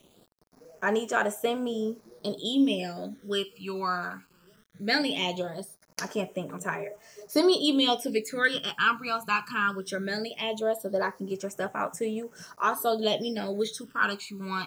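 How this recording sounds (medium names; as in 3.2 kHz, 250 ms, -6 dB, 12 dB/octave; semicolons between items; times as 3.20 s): a quantiser's noise floor 10-bit, dither none; phasing stages 12, 0.19 Hz, lowest notch 580–4300 Hz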